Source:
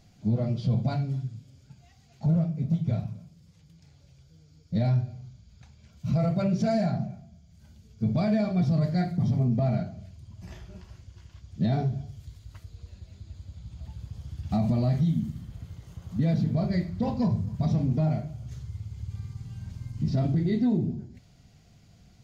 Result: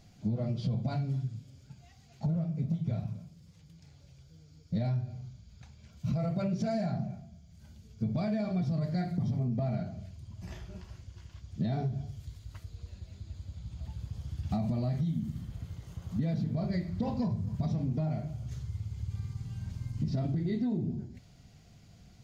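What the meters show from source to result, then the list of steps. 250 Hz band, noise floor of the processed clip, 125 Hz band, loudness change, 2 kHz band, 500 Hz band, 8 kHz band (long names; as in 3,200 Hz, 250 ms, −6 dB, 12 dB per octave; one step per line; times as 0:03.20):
−6.0 dB, −57 dBFS, −5.5 dB, −6.5 dB, −5.5 dB, −6.0 dB, can't be measured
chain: downward compressor, threshold −28 dBFS, peak gain reduction 8 dB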